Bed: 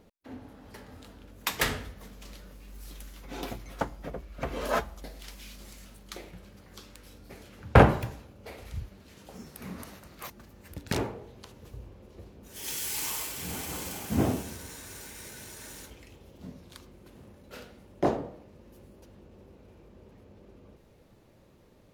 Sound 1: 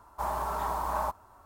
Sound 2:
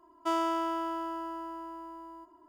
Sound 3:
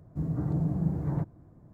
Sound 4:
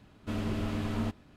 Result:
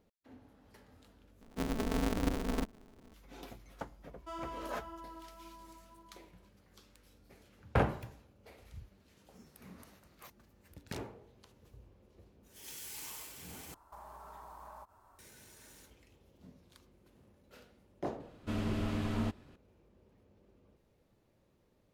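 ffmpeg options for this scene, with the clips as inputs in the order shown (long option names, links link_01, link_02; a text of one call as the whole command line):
ffmpeg -i bed.wav -i cue0.wav -i cue1.wav -i cue2.wav -i cue3.wav -filter_complex "[0:a]volume=-12.5dB[link_01];[3:a]aeval=exprs='val(0)*sgn(sin(2*PI*110*n/s))':channel_layout=same[link_02];[2:a]flanger=delay=17:depth=2.8:speed=1.9[link_03];[1:a]acompressor=threshold=-41dB:ratio=6:attack=3.2:release=140:knee=1:detection=peak[link_04];[link_01]asplit=3[link_05][link_06][link_07];[link_05]atrim=end=1.414[link_08];[link_02]atrim=end=1.73,asetpts=PTS-STARTPTS,volume=-4.5dB[link_09];[link_06]atrim=start=3.136:end=13.744[link_10];[link_04]atrim=end=1.45,asetpts=PTS-STARTPTS,volume=-7.5dB[link_11];[link_07]atrim=start=15.186[link_12];[link_03]atrim=end=2.48,asetpts=PTS-STARTPTS,volume=-11dB,afade=type=in:duration=0.004:curve=hsin,afade=type=out:start_time=2.476:duration=0.004:curve=hsin,adelay=176841S[link_13];[4:a]atrim=end=1.36,asetpts=PTS-STARTPTS,volume=-2dB,afade=type=in:duration=0.004:curve=hsin,afade=type=out:start_time=1.356:duration=0.004:curve=hsin,adelay=18200[link_14];[link_08][link_09]acrossfade=duration=0.004:curve1=hsin:curve2=hsin[link_15];[link_15][link_10]acrossfade=duration=0.004:curve1=hsin:curve2=hsin[link_16];[link_16][link_11]acrossfade=duration=0.004:curve1=hsin:curve2=hsin[link_17];[link_17][link_12]acrossfade=duration=0.004:curve1=hsin:curve2=hsin[link_18];[link_18][link_13][link_14]amix=inputs=3:normalize=0" out.wav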